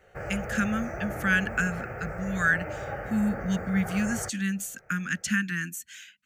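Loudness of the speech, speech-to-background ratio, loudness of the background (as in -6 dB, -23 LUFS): -28.5 LUFS, 8.0 dB, -36.5 LUFS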